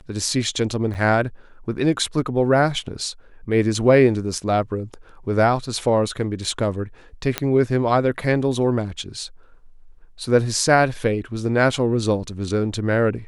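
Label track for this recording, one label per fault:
0.940000	0.950000	gap 8.5 ms
7.380000	7.380000	pop -5 dBFS

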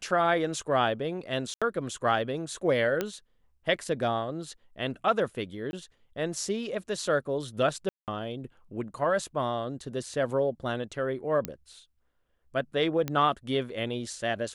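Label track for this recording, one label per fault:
1.540000	1.620000	gap 76 ms
3.010000	3.010000	pop -14 dBFS
5.710000	5.730000	gap 21 ms
7.890000	8.080000	gap 0.188 s
11.450000	11.450000	pop -14 dBFS
13.080000	13.080000	pop -16 dBFS

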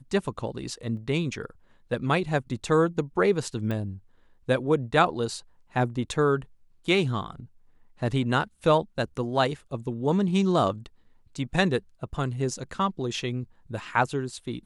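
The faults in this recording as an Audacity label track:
0.970000	0.970000	gap 2.3 ms
3.710000	3.710000	pop -20 dBFS

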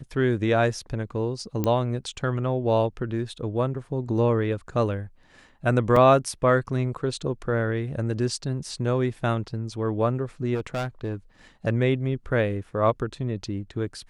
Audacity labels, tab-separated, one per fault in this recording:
1.640000	1.640000	pop -12 dBFS
5.960000	5.960000	gap 3.8 ms
10.540000	11.150000	clipped -24 dBFS

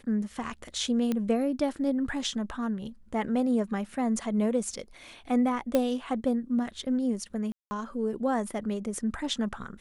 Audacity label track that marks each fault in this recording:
1.120000	1.120000	pop -16 dBFS
5.750000	5.750000	pop -12 dBFS
7.520000	7.710000	gap 0.19 s

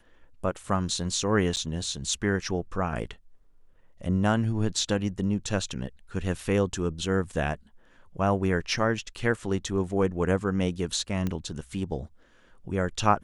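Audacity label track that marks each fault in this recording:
1.560000	1.570000	gap 8.5 ms
11.270000	11.270000	pop -17 dBFS

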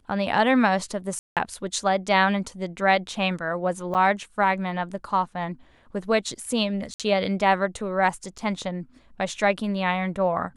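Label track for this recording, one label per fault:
1.190000	1.370000	gap 0.177 s
3.940000	3.950000	gap 8.1 ms
6.940000	7.000000	gap 57 ms
8.380000	8.390000	gap 6 ms

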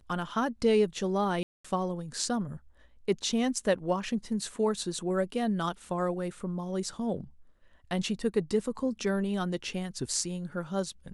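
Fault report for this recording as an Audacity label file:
1.430000	1.650000	gap 0.215 s

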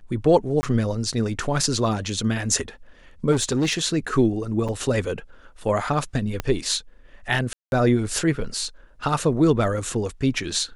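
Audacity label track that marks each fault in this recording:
0.610000	0.630000	gap 20 ms
3.310000	3.730000	clipped -17 dBFS
4.680000	4.690000	gap 6.2 ms
6.400000	6.400000	pop -11 dBFS
7.530000	7.720000	gap 0.191 s

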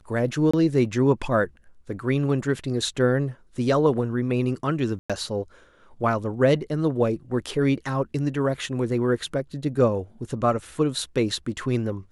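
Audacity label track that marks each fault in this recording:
0.510000	0.540000	gap 25 ms
4.990000	5.100000	gap 0.106 s

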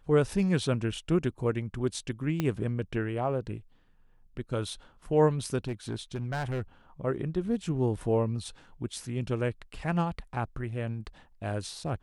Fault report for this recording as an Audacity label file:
2.400000	2.400000	pop -15 dBFS
5.670000	6.620000	clipped -27.5 dBFS

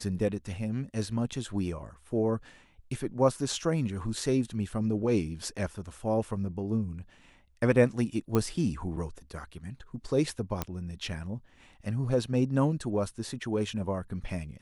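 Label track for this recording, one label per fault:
8.350000	8.350000	pop -14 dBFS
10.620000	10.620000	pop -15 dBFS

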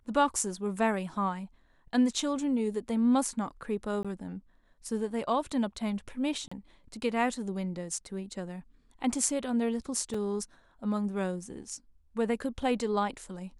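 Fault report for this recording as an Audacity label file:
4.030000	4.050000	gap 16 ms
6.480000	6.510000	gap 35 ms
10.140000	10.140000	gap 3.8 ms

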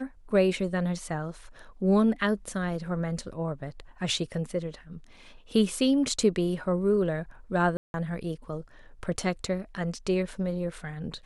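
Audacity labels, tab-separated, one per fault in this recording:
7.770000	7.940000	gap 0.171 s

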